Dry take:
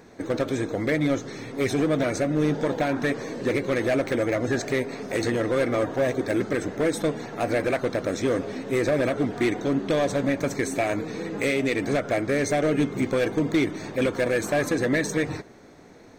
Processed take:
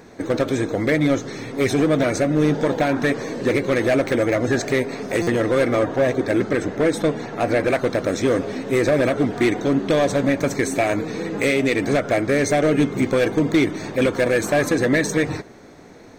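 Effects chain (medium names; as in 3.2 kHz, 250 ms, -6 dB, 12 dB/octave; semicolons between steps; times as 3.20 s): 5.79–7.68 s: treble shelf 7.4 kHz -7.5 dB; buffer glitch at 5.22 s, samples 256, times 8; trim +5 dB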